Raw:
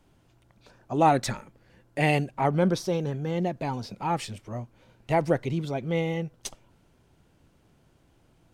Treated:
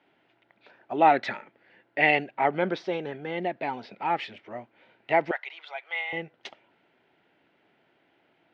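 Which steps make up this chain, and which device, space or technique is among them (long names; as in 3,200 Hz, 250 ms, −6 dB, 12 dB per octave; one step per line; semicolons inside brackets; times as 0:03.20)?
phone earpiece (loudspeaker in its box 420–3,300 Hz, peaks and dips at 510 Hz −5 dB, 1,100 Hz −8 dB, 2,000 Hz +5 dB)
0:05.31–0:06.13: inverse Chebyshev high-pass filter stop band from 180 Hz, stop band 70 dB
level +4 dB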